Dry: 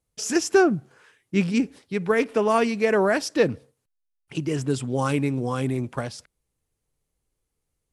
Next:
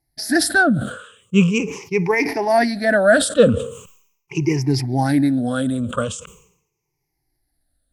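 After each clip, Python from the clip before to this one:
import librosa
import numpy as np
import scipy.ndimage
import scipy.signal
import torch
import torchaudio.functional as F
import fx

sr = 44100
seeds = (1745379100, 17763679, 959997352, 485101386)

y = fx.spec_ripple(x, sr, per_octave=0.76, drift_hz=-0.41, depth_db=23)
y = fx.sustainer(y, sr, db_per_s=83.0)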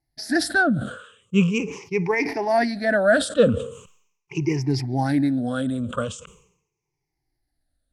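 y = scipy.signal.sosfilt(scipy.signal.bessel(2, 7100.0, 'lowpass', norm='mag', fs=sr, output='sos'), x)
y = F.gain(torch.from_numpy(y), -4.0).numpy()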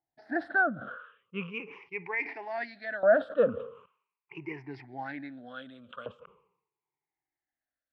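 y = fx.filter_lfo_bandpass(x, sr, shape='saw_up', hz=0.33, low_hz=780.0, high_hz=4000.0, q=1.2)
y = fx.air_absorb(y, sr, metres=470.0)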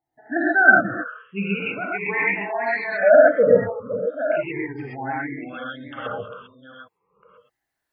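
y = fx.reverse_delay(x, sr, ms=613, wet_db=-10)
y = fx.spec_gate(y, sr, threshold_db=-20, keep='strong')
y = fx.rev_gated(y, sr, seeds[0], gate_ms=150, shape='rising', drr_db=-6.0)
y = F.gain(torch.from_numpy(y), 5.5).numpy()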